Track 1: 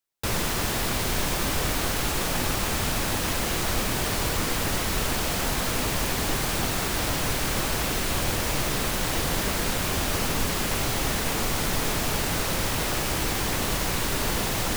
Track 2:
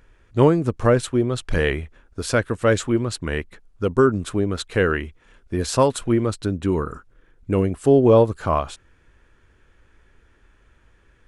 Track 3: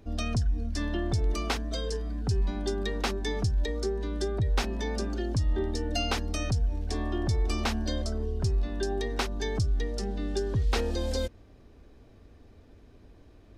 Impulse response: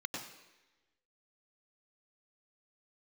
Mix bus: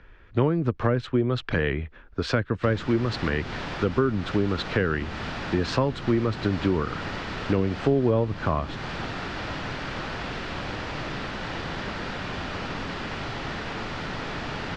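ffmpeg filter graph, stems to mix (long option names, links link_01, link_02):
-filter_complex "[0:a]adelay=2400,volume=-5dB,asplit=2[link_01][link_02];[link_02]volume=-12dB[link_03];[1:a]volume=3dB[link_04];[3:a]atrim=start_sample=2205[link_05];[link_03][link_05]afir=irnorm=-1:irlink=0[link_06];[link_01][link_04][link_06]amix=inputs=3:normalize=0,lowpass=frequency=4400:width=0.5412,lowpass=frequency=4400:width=1.3066,equalizer=frequency=1600:width=1.1:gain=3.5,acrossover=split=84|280[link_07][link_08][link_09];[link_07]acompressor=threshold=-41dB:ratio=4[link_10];[link_08]acompressor=threshold=-24dB:ratio=4[link_11];[link_09]acompressor=threshold=-26dB:ratio=4[link_12];[link_10][link_11][link_12]amix=inputs=3:normalize=0"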